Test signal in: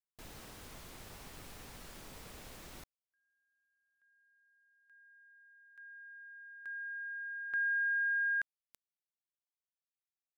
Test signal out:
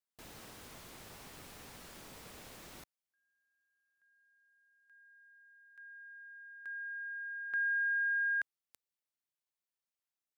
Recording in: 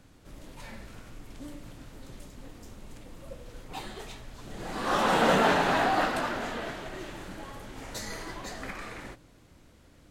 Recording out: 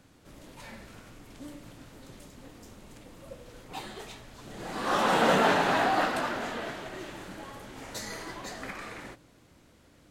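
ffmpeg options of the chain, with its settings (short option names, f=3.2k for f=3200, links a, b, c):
-af "lowshelf=f=61:g=-11.5"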